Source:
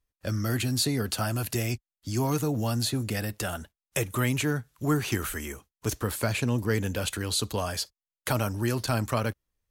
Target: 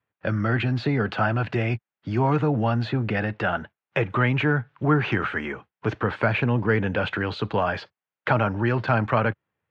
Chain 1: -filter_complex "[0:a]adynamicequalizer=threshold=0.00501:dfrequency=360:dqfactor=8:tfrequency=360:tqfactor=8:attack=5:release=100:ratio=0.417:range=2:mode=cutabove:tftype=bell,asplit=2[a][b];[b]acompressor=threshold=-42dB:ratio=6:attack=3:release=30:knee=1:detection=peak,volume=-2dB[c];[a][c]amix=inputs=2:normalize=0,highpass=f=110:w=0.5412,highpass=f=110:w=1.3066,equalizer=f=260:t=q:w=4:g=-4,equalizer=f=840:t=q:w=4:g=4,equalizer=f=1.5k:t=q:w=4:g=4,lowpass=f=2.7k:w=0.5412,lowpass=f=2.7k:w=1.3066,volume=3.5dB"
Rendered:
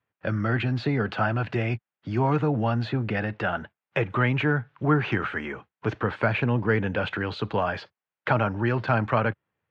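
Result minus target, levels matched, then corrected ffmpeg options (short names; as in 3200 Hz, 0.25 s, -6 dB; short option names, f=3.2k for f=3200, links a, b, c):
compressor: peak gain reduction +9 dB
-filter_complex "[0:a]adynamicequalizer=threshold=0.00501:dfrequency=360:dqfactor=8:tfrequency=360:tqfactor=8:attack=5:release=100:ratio=0.417:range=2:mode=cutabove:tftype=bell,asplit=2[a][b];[b]acompressor=threshold=-31dB:ratio=6:attack=3:release=30:knee=1:detection=peak,volume=-2dB[c];[a][c]amix=inputs=2:normalize=0,highpass=f=110:w=0.5412,highpass=f=110:w=1.3066,equalizer=f=260:t=q:w=4:g=-4,equalizer=f=840:t=q:w=4:g=4,equalizer=f=1.5k:t=q:w=4:g=4,lowpass=f=2.7k:w=0.5412,lowpass=f=2.7k:w=1.3066,volume=3.5dB"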